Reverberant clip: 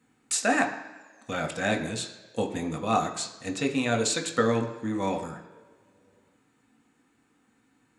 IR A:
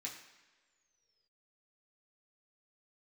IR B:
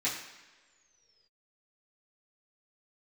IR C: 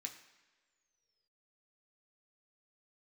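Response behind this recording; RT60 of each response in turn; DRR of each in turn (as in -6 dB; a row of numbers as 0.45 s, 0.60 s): C; no single decay rate, no single decay rate, no single decay rate; -4.0 dB, -10.5 dB, 2.0 dB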